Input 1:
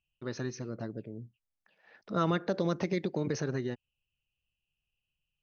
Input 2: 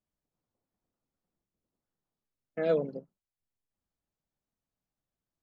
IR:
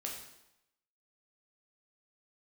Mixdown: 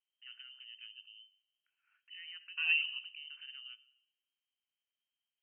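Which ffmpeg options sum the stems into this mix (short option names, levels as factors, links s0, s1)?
-filter_complex "[0:a]lowpass=f=1800:w=0.5412,lowpass=f=1800:w=1.3066,alimiter=level_in=1.26:limit=0.0631:level=0:latency=1:release=83,volume=0.794,volume=0.2,asplit=2[s0][s1];[s1]volume=0.237[s2];[1:a]volume=0.596,asplit=2[s3][s4];[s4]volume=0.251[s5];[2:a]atrim=start_sample=2205[s6];[s2][s5]amix=inputs=2:normalize=0[s7];[s7][s6]afir=irnorm=-1:irlink=0[s8];[s0][s3][s8]amix=inputs=3:normalize=0,bandreject=f=128.3:t=h:w=4,bandreject=f=256.6:t=h:w=4,bandreject=f=384.9:t=h:w=4,bandreject=f=513.2:t=h:w=4,bandreject=f=641.5:t=h:w=4,bandreject=f=769.8:t=h:w=4,lowpass=f=2700:t=q:w=0.5098,lowpass=f=2700:t=q:w=0.6013,lowpass=f=2700:t=q:w=0.9,lowpass=f=2700:t=q:w=2.563,afreqshift=-3200,equalizer=f=500:w=1:g=-14.5"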